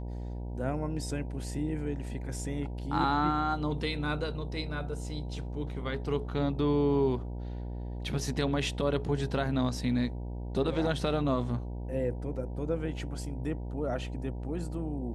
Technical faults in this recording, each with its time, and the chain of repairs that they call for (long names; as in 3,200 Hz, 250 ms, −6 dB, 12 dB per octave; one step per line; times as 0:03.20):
mains buzz 60 Hz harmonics 16 −37 dBFS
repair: hum removal 60 Hz, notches 16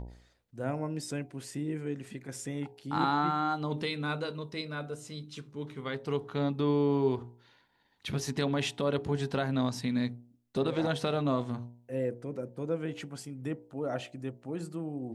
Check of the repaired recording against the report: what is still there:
none of them is left